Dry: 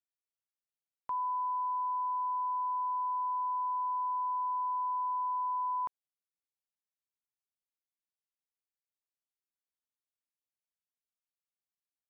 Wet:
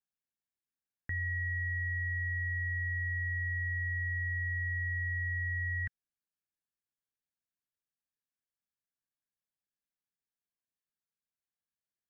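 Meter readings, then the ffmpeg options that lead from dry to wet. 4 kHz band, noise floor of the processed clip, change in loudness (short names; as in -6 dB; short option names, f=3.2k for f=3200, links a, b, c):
n/a, under -85 dBFS, -0.5 dB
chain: -af "equalizer=f=730:t=o:w=0.77:g=13.5,aeval=exprs='val(0)*sin(2*PI*910*n/s)':c=same,volume=-4dB"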